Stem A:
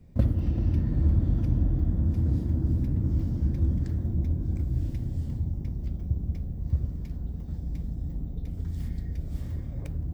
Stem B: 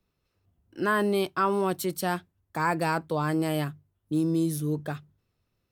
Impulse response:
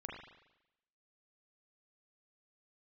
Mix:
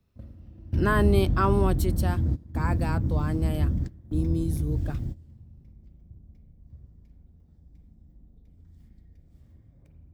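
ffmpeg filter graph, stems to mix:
-filter_complex "[0:a]volume=0.944,asplit=2[s0][s1];[s1]volume=0.0794[s2];[1:a]lowshelf=f=280:g=6,volume=0.944,afade=t=out:st=1.5:d=0.69:silence=0.446684,asplit=2[s3][s4];[s4]apad=whole_len=446764[s5];[s0][s5]sidechaingate=range=0.0501:threshold=0.00178:ratio=16:detection=peak[s6];[2:a]atrim=start_sample=2205[s7];[s2][s7]afir=irnorm=-1:irlink=0[s8];[s6][s3][s8]amix=inputs=3:normalize=0"

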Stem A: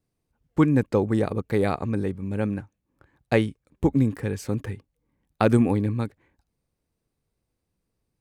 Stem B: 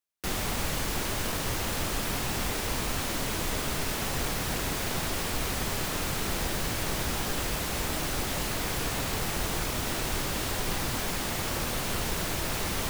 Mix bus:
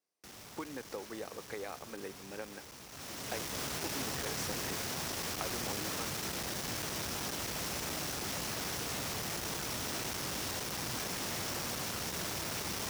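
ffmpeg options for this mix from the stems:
-filter_complex "[0:a]highpass=530,acompressor=threshold=0.0178:ratio=6,volume=0.596[s0];[1:a]asoftclip=type=hard:threshold=0.0224,volume=0.75,afade=t=in:st=2.87:d=0.71:silence=0.223872[s1];[s0][s1]amix=inputs=2:normalize=0,highpass=88,equalizer=f=5600:t=o:w=0.42:g=6"

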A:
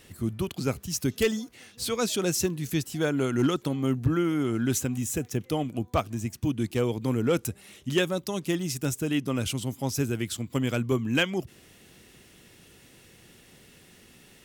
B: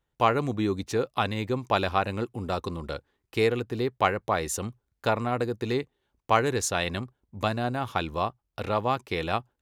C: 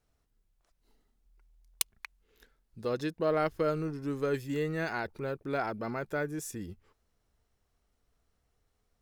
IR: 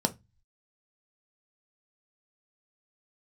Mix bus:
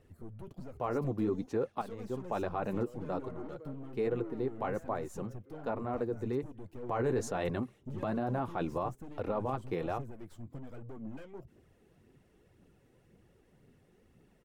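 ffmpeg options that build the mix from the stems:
-filter_complex "[0:a]acompressor=threshold=0.0501:ratio=6,aeval=exprs='(tanh(56.2*val(0)+0.35)-tanh(0.35))/56.2':c=same,aphaser=in_gain=1:out_gain=1:delay=2.7:decay=0.38:speed=1.9:type=triangular,volume=0.668[s0];[1:a]highpass=120,dynaudnorm=f=290:g=13:m=3.76,adelay=600,volume=1.06[s1];[2:a]highpass=370,volume=0.15,asplit=2[s2][s3];[s3]apad=whole_len=450574[s4];[s1][s4]sidechaincompress=threshold=0.00251:ratio=8:attack=16:release=1040[s5];[s0][s5][s2]amix=inputs=3:normalize=0,firequalizer=gain_entry='entry(460,0);entry(2200,-12);entry(3400,-17)':delay=0.05:min_phase=1,flanger=delay=1.4:depth=7.5:regen=-42:speed=1.2:shape=triangular,alimiter=limit=0.0668:level=0:latency=1:release=18"

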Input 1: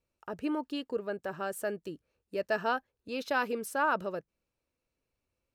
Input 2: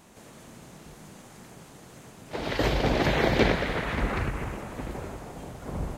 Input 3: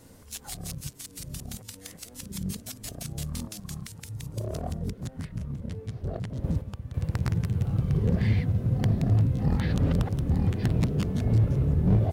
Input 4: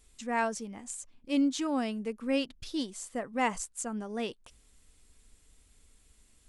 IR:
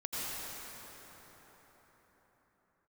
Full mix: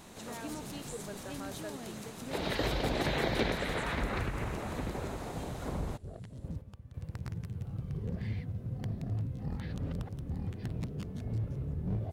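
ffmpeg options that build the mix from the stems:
-filter_complex "[0:a]volume=0.316[s0];[1:a]volume=1.26[s1];[2:a]volume=0.237[s2];[3:a]acompressor=threshold=0.0158:ratio=6,volume=0.447[s3];[s0][s1][s3]amix=inputs=3:normalize=0,equalizer=f=3900:t=o:w=0.26:g=6,acompressor=threshold=0.0158:ratio=2,volume=1[s4];[s2][s4]amix=inputs=2:normalize=0"

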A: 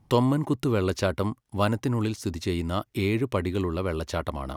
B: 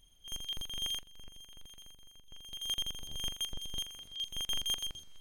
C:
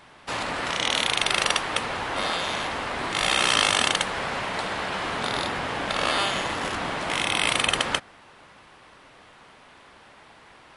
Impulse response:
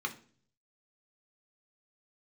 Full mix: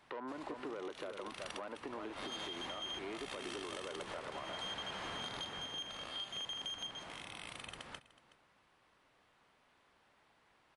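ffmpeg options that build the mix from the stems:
-filter_complex "[0:a]lowpass=1800,asoftclip=type=tanh:threshold=0.106,highpass=410,volume=0.596,asplit=3[s0][s1][s2];[s1]volume=0.237[s3];[1:a]adelay=2000,volume=1.33[s4];[2:a]acrossover=split=220[s5][s6];[s6]acompressor=threshold=0.0398:ratio=2[s7];[s5][s7]amix=inputs=2:normalize=0,volume=0.398,afade=t=in:st=1.99:d=0.68:silence=0.446684,afade=t=out:st=5.17:d=0.55:silence=0.251189,asplit=2[s8][s9];[s9]volume=0.119[s10];[s2]apad=whole_len=474659[s11];[s8][s11]sidechaincompress=threshold=0.00631:ratio=4:attack=16:release=277[s12];[s0][s4]amix=inputs=2:normalize=0,highpass=270,lowpass=4600,alimiter=level_in=2.37:limit=0.0631:level=0:latency=1:release=80,volume=0.422,volume=1[s13];[s3][s10]amix=inputs=2:normalize=0,aecho=0:1:371:1[s14];[s12][s13][s14]amix=inputs=3:normalize=0,acompressor=threshold=0.01:ratio=6"

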